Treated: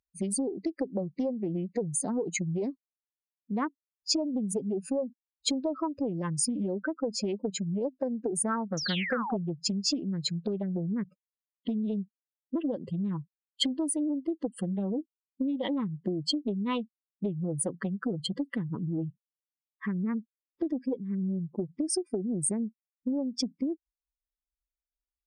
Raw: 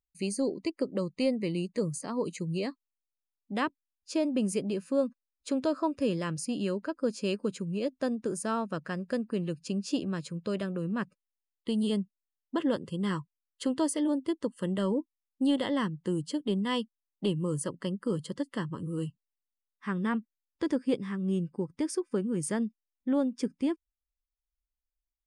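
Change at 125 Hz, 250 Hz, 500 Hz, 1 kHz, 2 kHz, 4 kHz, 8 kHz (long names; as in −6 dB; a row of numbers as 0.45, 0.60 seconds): +0.5, −0.5, −2.0, −1.5, −0.5, +6.0, +7.5 decibels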